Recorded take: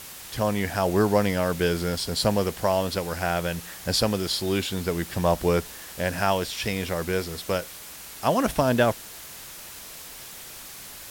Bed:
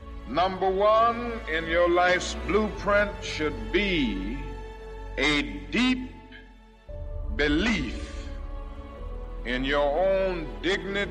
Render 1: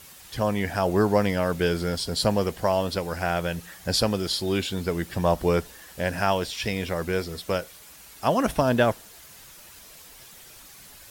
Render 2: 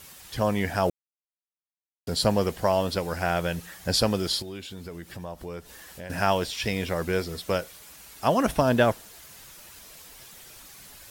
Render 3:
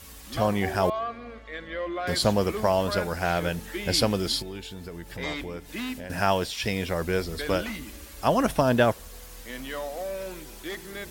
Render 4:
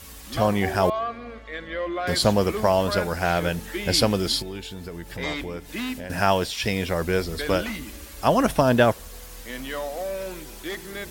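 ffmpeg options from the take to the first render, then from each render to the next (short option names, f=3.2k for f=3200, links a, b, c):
-af "afftdn=nr=8:nf=-42"
-filter_complex "[0:a]asettb=1/sr,asplit=3[a][b][c];[a]atrim=end=4.424[d];[b]atrim=start=4.42:end=6.1,asetpts=PTS-STARTPTS,afade=t=in:d=0.004:c=qsin,afade=t=out:st=1.676:d=0.004:c=qsin,acompressor=threshold=-41dB:ratio=2.5:attack=3.2:release=140:knee=1:detection=peak[e];[c]atrim=start=6.096[f];[d][e]acrossfade=d=0.004:c1=hsin:c2=qsin[g];[g][f]acrossfade=d=0.004:c1=qsin:c2=hsin,asplit=3[h][i][j];[h]atrim=end=0.9,asetpts=PTS-STARTPTS,afade=t=out:st=0.896:d=0.004:c=hsin[k];[i]atrim=start=0.9:end=2.07,asetpts=PTS-STARTPTS,volume=0[l];[j]atrim=start=2.07,asetpts=PTS-STARTPTS,afade=t=in:d=0.004:c=hsin[m];[k][l][m]concat=n=3:v=0:a=1"
-filter_complex "[1:a]volume=-10dB[a];[0:a][a]amix=inputs=2:normalize=0"
-af "volume=3dB"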